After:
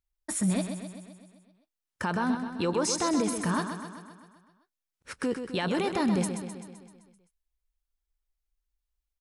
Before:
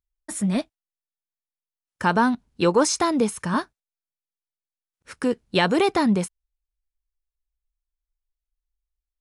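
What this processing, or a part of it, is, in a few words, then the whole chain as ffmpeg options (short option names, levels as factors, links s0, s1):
stacked limiters: -af "alimiter=limit=0.211:level=0:latency=1:release=435,alimiter=limit=0.0944:level=0:latency=1:release=18,aecho=1:1:129|258|387|516|645|774|903|1032:0.398|0.239|0.143|0.086|0.0516|0.031|0.0186|0.0111"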